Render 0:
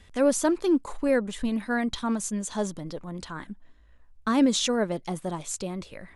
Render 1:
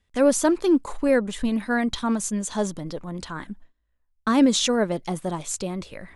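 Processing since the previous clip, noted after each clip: gate with hold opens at -41 dBFS; trim +3.5 dB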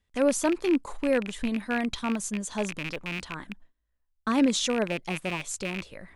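rattle on loud lows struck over -36 dBFS, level -17 dBFS; trim -5 dB

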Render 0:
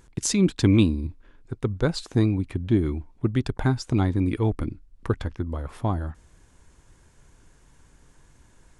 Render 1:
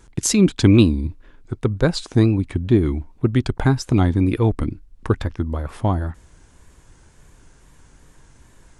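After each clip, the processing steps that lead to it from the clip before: wow and flutter 83 cents; trim +5.5 dB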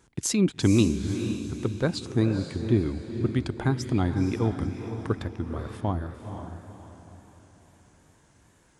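high-pass 79 Hz; on a send: echo that smears into a reverb 489 ms, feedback 41%, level -8 dB; on the sum: trim -7.5 dB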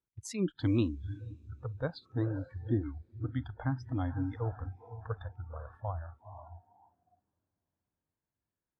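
spectral noise reduction 25 dB; treble shelf 3.7 kHz -11 dB; trim -7 dB

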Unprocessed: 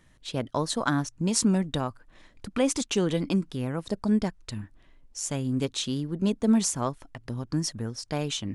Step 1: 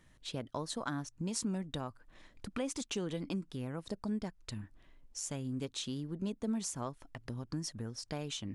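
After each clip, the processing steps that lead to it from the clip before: compression 2:1, threshold -36 dBFS, peak gain reduction 10.5 dB; trim -4 dB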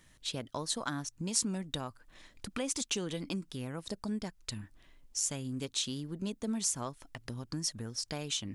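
treble shelf 2.4 kHz +9 dB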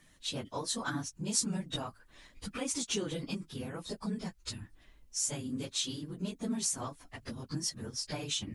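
phase randomisation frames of 50 ms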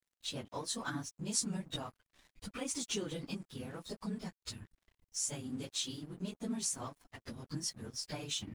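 crossover distortion -55.5 dBFS; trim -3 dB

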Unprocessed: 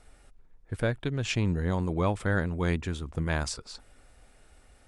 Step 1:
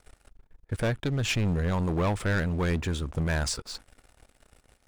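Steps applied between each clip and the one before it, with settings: waveshaping leveller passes 3; trim -6 dB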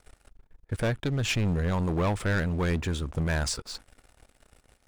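no audible change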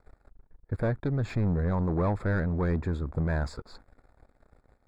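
boxcar filter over 15 samples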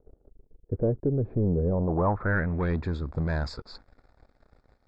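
low-pass sweep 440 Hz -> 5.1 kHz, 1.66–2.90 s

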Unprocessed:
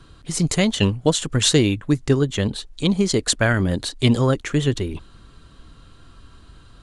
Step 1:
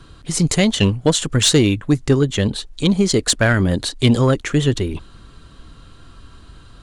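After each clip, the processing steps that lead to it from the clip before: saturation -8 dBFS, distortion -21 dB; trim +4 dB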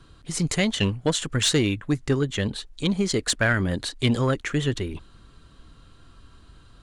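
dynamic bell 1.8 kHz, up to +5 dB, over -37 dBFS, Q 0.95; trim -8 dB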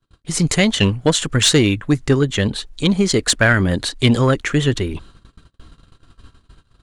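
gate -47 dBFS, range -35 dB; trim +7.5 dB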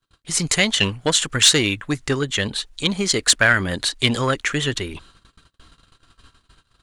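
tilt shelf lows -5.5 dB, about 680 Hz; trim -3.5 dB

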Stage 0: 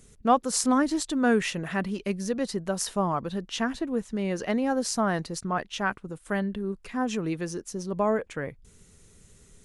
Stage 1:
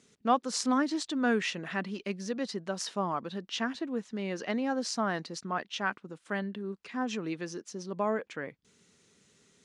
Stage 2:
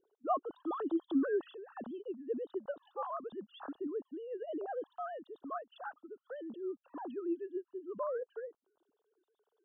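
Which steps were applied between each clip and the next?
Chebyshev band-pass 250–5000 Hz, order 2; peaking EQ 450 Hz -4.5 dB 2.1 oct; trim -1 dB
formants replaced by sine waves; Butterworth band-stop 2.2 kHz, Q 0.79; trim -5.5 dB

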